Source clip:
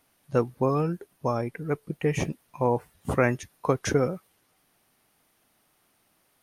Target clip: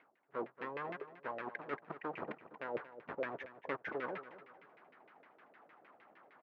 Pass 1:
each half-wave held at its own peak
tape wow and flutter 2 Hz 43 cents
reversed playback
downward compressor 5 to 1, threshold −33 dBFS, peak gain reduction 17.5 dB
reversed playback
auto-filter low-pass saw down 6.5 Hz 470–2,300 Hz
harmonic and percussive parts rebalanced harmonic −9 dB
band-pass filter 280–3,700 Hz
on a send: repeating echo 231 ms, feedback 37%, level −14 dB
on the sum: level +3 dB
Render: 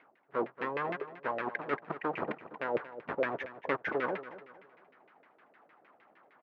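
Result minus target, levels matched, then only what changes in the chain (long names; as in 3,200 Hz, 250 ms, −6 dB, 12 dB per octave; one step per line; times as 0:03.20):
downward compressor: peak gain reduction −8 dB
change: downward compressor 5 to 1, threshold −43 dBFS, peak gain reduction 25.5 dB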